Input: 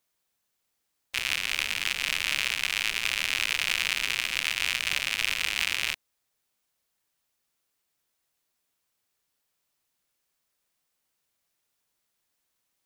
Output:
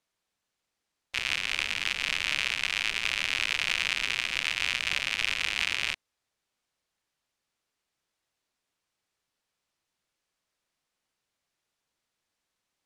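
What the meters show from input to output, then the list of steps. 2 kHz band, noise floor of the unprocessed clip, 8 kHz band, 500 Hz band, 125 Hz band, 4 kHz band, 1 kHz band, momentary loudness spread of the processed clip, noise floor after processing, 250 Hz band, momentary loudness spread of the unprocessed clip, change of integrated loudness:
−0.5 dB, −79 dBFS, −5.0 dB, 0.0 dB, 0.0 dB, −1.5 dB, −0.5 dB, 3 LU, −85 dBFS, 0.0 dB, 3 LU, −1.0 dB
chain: high-frequency loss of the air 55 metres

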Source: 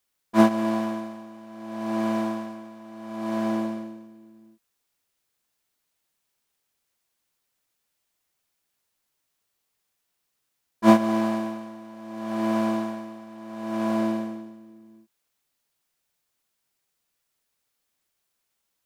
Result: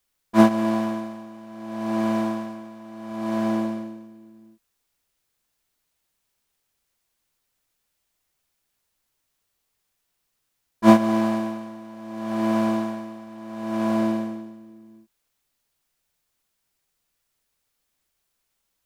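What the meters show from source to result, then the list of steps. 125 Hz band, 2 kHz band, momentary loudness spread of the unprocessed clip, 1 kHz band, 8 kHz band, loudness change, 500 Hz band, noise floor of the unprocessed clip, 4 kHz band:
+3.5 dB, +1.5 dB, 21 LU, +1.5 dB, can't be measured, +2.0 dB, +1.5 dB, −78 dBFS, +1.5 dB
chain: low-shelf EQ 71 Hz +11.5 dB
level +1.5 dB

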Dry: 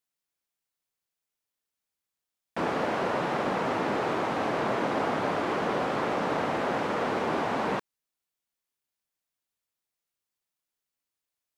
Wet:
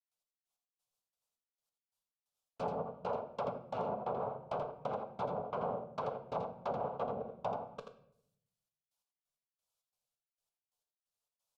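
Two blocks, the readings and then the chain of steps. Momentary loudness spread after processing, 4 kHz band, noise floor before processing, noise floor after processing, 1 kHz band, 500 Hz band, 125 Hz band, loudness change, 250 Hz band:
3 LU, −19.5 dB, below −85 dBFS, below −85 dBFS, −10.5 dB, −9.0 dB, −9.5 dB, −11.0 dB, −16.0 dB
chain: gate pattern ".x..x..xx.xx." 133 BPM −60 dB
rotating-speaker cabinet horn 7 Hz, later 1.2 Hz, at 0:06.57
flanger 0.87 Hz, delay 6.9 ms, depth 4.1 ms, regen −78%
phaser with its sweep stopped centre 770 Hz, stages 4
treble cut that deepens with the level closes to 420 Hz, closed at −34 dBFS
high-shelf EQ 6,100 Hz −5.5 dB
rectangular room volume 150 cubic metres, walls mixed, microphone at 0.33 metres
in parallel at +2.5 dB: downward compressor, threshold −50 dBFS, peak gain reduction 14 dB
on the sum: low-shelf EQ 160 Hz −6 dB
single-tap delay 83 ms −7 dB
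level +1.5 dB

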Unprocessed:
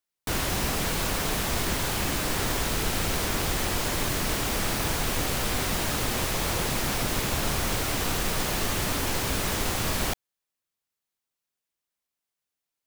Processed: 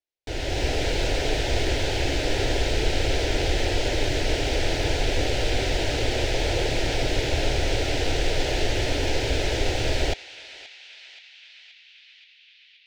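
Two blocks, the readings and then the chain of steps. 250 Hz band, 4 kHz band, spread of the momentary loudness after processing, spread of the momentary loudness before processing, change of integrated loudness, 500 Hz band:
+1.0 dB, +2.5 dB, 9 LU, 0 LU, +1.5 dB, +6.5 dB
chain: automatic gain control gain up to 8 dB
high-frequency loss of the air 150 metres
phaser with its sweep stopped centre 470 Hz, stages 4
feedback echo with a band-pass in the loop 526 ms, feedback 76%, band-pass 2,900 Hz, level −13 dB

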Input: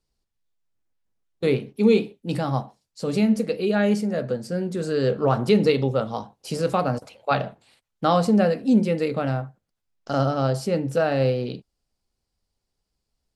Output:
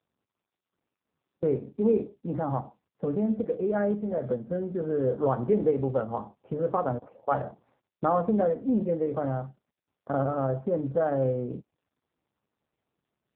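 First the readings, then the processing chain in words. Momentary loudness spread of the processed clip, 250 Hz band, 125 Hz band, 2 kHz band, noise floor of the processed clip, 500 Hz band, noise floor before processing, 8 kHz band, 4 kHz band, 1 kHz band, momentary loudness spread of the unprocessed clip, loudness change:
9 LU, −6.5 dB, −7.0 dB, −12.5 dB, below −85 dBFS, −4.0 dB, −80 dBFS, below −35 dB, below −25 dB, −4.5 dB, 11 LU, −5.5 dB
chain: low-pass filter 1,400 Hz 24 dB per octave
dynamic equaliser 180 Hz, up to −6 dB, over −33 dBFS, Q 1.6
in parallel at −0.5 dB: downward compressor 12 to 1, threshold −28 dBFS, peak gain reduction 14.5 dB
on the sum: level −5 dB
AMR narrowband 5.9 kbit/s 8,000 Hz

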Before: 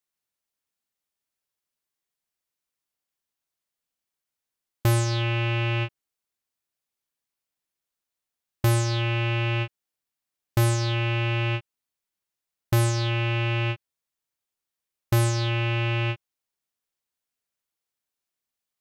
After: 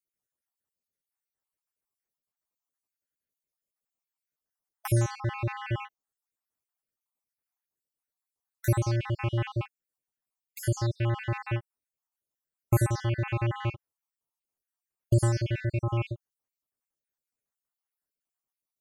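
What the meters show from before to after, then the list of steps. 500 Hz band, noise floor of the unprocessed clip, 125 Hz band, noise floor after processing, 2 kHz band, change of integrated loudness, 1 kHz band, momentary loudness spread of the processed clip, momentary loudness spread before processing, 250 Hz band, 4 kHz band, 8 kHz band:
−4.0 dB, below −85 dBFS, −4.0 dB, below −85 dBFS, −9.5 dB, −4.5 dB, −5.0 dB, 9 LU, 7 LU, −3.5 dB, −13.5 dB, −6.0 dB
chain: time-frequency cells dropped at random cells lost 56%
parametric band 3,500 Hz −11.5 dB 1.3 octaves

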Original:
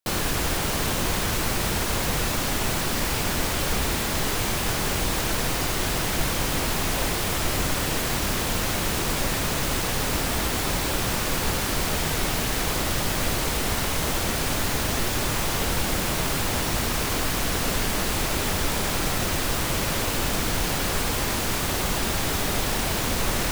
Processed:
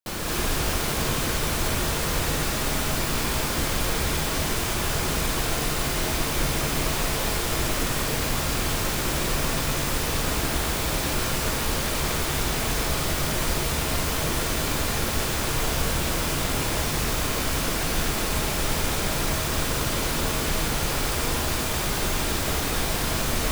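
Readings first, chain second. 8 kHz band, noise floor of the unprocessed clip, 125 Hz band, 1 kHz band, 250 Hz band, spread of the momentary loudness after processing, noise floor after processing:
−0.5 dB, −26 dBFS, +0.5 dB, −0.5 dB, −0.5 dB, 0 LU, −27 dBFS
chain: reverb whose tail is shaped and stops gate 270 ms rising, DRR −4 dB
level −6 dB

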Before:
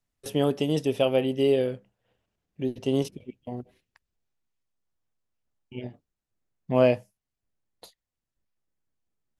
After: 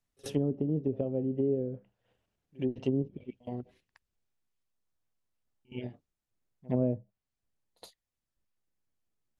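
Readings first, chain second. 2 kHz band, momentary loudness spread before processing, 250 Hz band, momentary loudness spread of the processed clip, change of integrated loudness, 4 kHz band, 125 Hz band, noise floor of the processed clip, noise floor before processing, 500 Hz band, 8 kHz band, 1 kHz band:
−17.5 dB, 18 LU, −3.5 dB, 15 LU, −7.5 dB, −17.0 dB, −2.0 dB, below −85 dBFS, below −85 dBFS, −9.0 dB, can't be measured, −15.0 dB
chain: treble cut that deepens with the level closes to 330 Hz, closed at −21.5 dBFS
dynamic equaliser 980 Hz, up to −3 dB, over −42 dBFS, Q 0.84
echo ahead of the sound 68 ms −23 dB
level −2 dB

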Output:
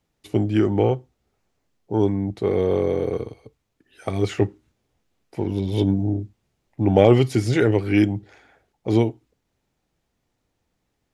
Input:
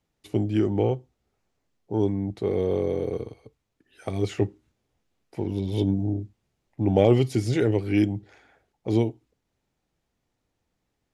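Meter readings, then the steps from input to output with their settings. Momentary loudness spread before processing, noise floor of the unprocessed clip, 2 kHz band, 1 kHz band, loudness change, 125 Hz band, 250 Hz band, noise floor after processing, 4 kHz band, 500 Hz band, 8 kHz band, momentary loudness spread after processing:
13 LU, −79 dBFS, +7.5 dB, +6.0 dB, +4.0 dB, +3.5 dB, +4.0 dB, −75 dBFS, +4.5 dB, +4.5 dB, +3.5 dB, 13 LU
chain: dynamic equaliser 1,400 Hz, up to +6 dB, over −42 dBFS, Q 0.97
level +3.5 dB

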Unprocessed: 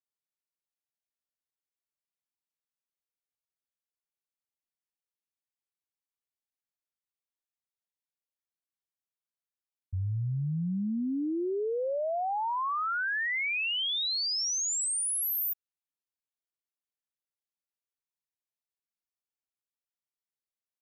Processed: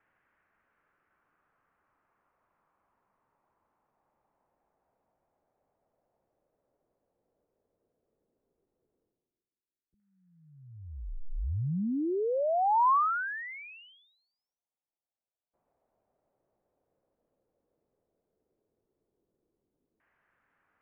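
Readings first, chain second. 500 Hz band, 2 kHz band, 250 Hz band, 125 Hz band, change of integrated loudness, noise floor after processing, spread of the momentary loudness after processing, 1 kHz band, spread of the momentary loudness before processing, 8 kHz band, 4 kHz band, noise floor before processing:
0.0 dB, −7.5 dB, −3.0 dB, −4.5 dB, +0.5 dB, below −85 dBFS, 21 LU, +4.5 dB, 5 LU, below −40 dB, below −30 dB, below −85 dBFS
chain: reversed playback
upward compression, threshold −49 dBFS
reversed playback
high-pass filter 140 Hz
single-sideband voice off tune −300 Hz 300–3,100 Hz
auto-filter low-pass saw down 0.1 Hz 350–1,700 Hz

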